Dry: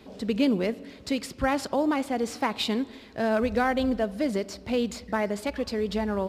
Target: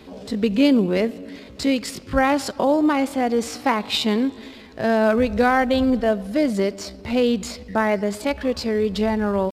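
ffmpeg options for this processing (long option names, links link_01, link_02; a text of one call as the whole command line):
ffmpeg -i in.wav -af "atempo=0.66,volume=6.5dB" out.wav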